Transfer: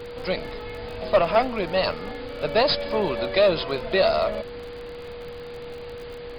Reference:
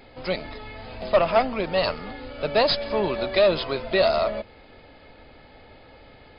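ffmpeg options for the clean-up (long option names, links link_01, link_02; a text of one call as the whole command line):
ffmpeg -i in.wav -af "adeclick=threshold=4,bandreject=frequency=480:width=30,afftdn=noise_reduction=12:noise_floor=-37" out.wav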